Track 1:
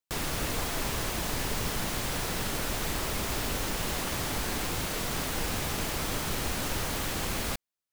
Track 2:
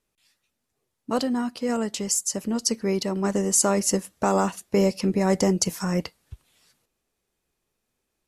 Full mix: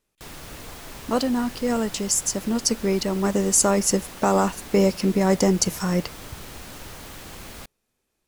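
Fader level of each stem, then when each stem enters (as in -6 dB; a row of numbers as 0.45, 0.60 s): -8.0, +2.0 dB; 0.10, 0.00 s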